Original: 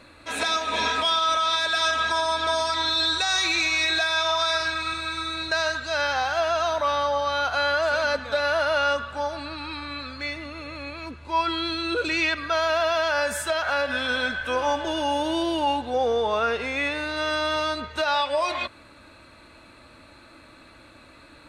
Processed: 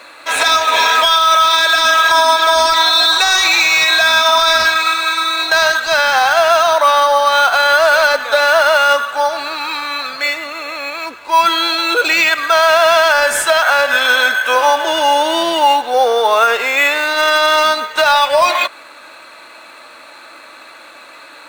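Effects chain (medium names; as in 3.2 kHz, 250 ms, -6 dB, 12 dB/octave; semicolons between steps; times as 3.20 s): high-pass 660 Hz 12 dB/octave; in parallel at -11.5 dB: sample-and-hold 9×; on the sum: loudness maximiser +14.5 dB; trim -1 dB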